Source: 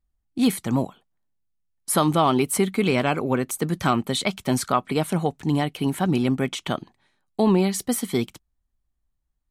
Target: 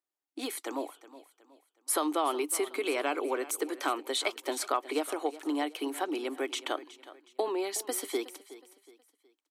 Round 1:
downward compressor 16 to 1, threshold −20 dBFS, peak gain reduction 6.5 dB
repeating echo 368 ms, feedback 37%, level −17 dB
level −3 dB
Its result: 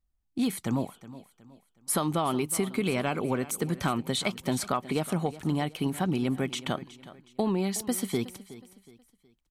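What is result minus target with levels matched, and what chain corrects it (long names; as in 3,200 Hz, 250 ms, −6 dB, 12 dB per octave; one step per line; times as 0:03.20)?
250 Hz band +4.0 dB
downward compressor 16 to 1, threshold −20 dBFS, peak gain reduction 6.5 dB
Chebyshev high-pass filter 290 Hz, order 6
repeating echo 368 ms, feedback 37%, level −17 dB
level −3 dB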